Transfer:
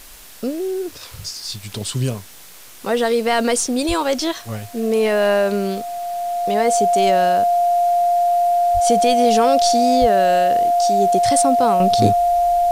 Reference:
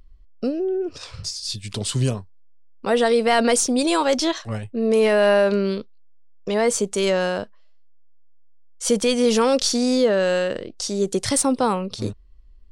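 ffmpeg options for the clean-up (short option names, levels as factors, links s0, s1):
-filter_complex "[0:a]bandreject=f=700:w=30,asplit=3[s0][s1][s2];[s0]afade=t=out:st=3.87:d=0.02[s3];[s1]highpass=f=140:w=0.5412,highpass=f=140:w=1.3066,afade=t=in:st=3.87:d=0.02,afade=t=out:st=3.99:d=0.02[s4];[s2]afade=t=in:st=3.99:d=0.02[s5];[s3][s4][s5]amix=inputs=3:normalize=0,asplit=3[s6][s7][s8];[s6]afade=t=out:st=8.73:d=0.02[s9];[s7]highpass=f=140:w=0.5412,highpass=f=140:w=1.3066,afade=t=in:st=8.73:d=0.02,afade=t=out:st=8.85:d=0.02[s10];[s8]afade=t=in:st=8.85:d=0.02[s11];[s9][s10][s11]amix=inputs=3:normalize=0,asplit=3[s12][s13][s14];[s12]afade=t=out:st=10:d=0.02[s15];[s13]highpass=f=140:w=0.5412,highpass=f=140:w=1.3066,afade=t=in:st=10:d=0.02,afade=t=out:st=10.12:d=0.02[s16];[s14]afade=t=in:st=10.12:d=0.02[s17];[s15][s16][s17]amix=inputs=3:normalize=0,afwtdn=0.0089,asetnsamples=n=441:p=0,asendcmd='11.8 volume volume -9.5dB',volume=1"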